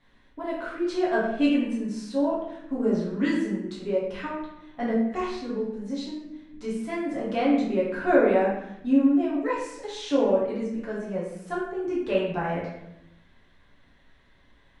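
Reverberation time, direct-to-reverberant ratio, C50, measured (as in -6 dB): 0.85 s, -7.5 dB, 2.0 dB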